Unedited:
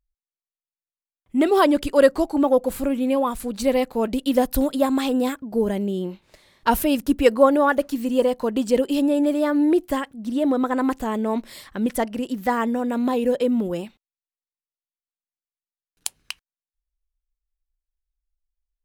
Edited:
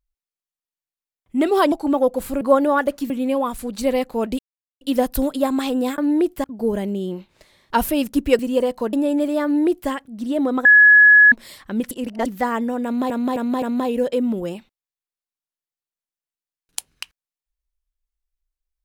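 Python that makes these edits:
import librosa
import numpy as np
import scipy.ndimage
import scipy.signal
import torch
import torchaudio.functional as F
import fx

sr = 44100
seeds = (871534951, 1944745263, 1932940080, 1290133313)

y = fx.edit(x, sr, fx.cut(start_s=1.72, length_s=0.5),
    fx.insert_silence(at_s=4.2, length_s=0.42),
    fx.move(start_s=7.32, length_s=0.69, to_s=2.91),
    fx.cut(start_s=8.55, length_s=0.44),
    fx.duplicate(start_s=9.5, length_s=0.46, to_s=5.37),
    fx.bleep(start_s=10.71, length_s=0.67, hz=1690.0, db=-6.5),
    fx.reverse_span(start_s=11.97, length_s=0.35),
    fx.repeat(start_s=12.9, length_s=0.26, count=4), tone=tone)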